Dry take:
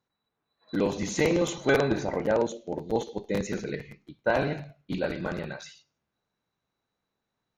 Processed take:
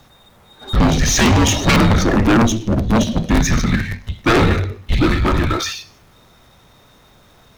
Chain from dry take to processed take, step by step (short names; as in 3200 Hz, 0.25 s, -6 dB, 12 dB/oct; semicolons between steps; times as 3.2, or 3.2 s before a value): sine folder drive 11 dB, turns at -11 dBFS; frequency shift -240 Hz; power-law curve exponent 0.7